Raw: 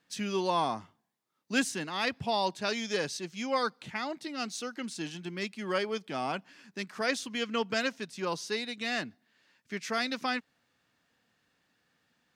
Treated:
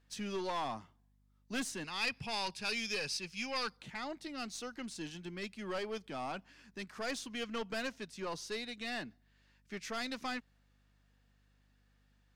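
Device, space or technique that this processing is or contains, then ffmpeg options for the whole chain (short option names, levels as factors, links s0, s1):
valve amplifier with mains hum: -filter_complex "[0:a]aeval=exprs='(tanh(22.4*val(0)+0.25)-tanh(0.25))/22.4':c=same,aeval=exprs='val(0)+0.000562*(sin(2*PI*50*n/s)+sin(2*PI*2*50*n/s)/2+sin(2*PI*3*50*n/s)/3+sin(2*PI*4*50*n/s)/4+sin(2*PI*5*50*n/s)/5)':c=same,asettb=1/sr,asplit=3[s0][s1][s2];[s0]atrim=end=1.844[s3];[s1]atrim=start=1.84:end=3.77,asetpts=PTS-STARTPTS,afade=t=in:d=0.004:c=qsin,afade=t=out:st=1.926:d=0.004:c=qsin,equalizer=f=315:t=o:w=0.33:g=-10,equalizer=f=630:t=o:w=0.33:g=-8,equalizer=f=2500:t=o:w=0.33:g=11,equalizer=f=5000:t=o:w=0.33:g=10,equalizer=f=10000:t=o:w=0.33:g=8[s4];[s2]atrim=start=3.766[s5];[s3][s4]acrossfade=d=0.004:c1=hsin:c2=qsin[s6];[s6][s5]acrossfade=d=0.004:c1=qsin:c2=hsin,volume=0.596"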